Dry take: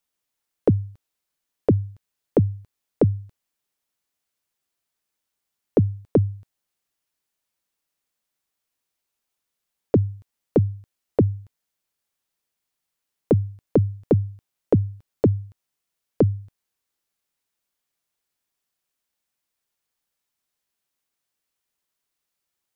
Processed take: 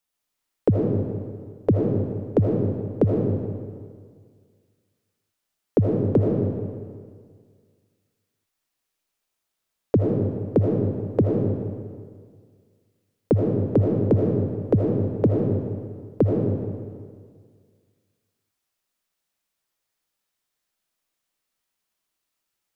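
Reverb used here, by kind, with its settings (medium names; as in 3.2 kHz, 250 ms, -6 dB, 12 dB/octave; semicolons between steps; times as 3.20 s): algorithmic reverb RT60 1.9 s, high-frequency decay 0.8×, pre-delay 40 ms, DRR -1.5 dB; trim -1.5 dB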